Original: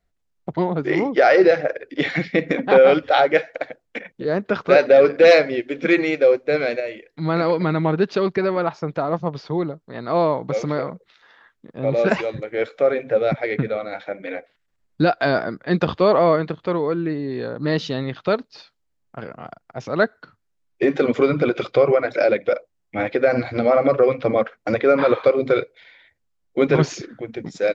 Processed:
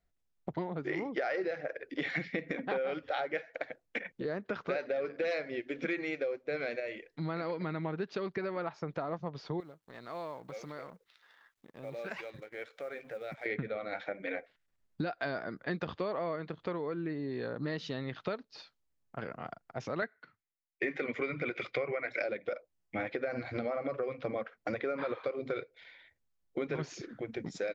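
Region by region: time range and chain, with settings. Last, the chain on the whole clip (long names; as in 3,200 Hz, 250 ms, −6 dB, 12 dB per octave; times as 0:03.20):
0:09.60–0:13.46: mu-law and A-law mismatch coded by A + tilt shelving filter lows −4 dB, about 680 Hz + downward compressor 2 to 1, threshold −44 dBFS
0:20.02–0:22.22: parametric band 2,100 Hz +12.5 dB 0.58 octaves + multiband upward and downward expander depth 70%
whole clip: downward compressor 5 to 1, threshold −27 dBFS; dynamic equaliser 1,900 Hz, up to +4 dB, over −45 dBFS, Q 1.5; level −6.5 dB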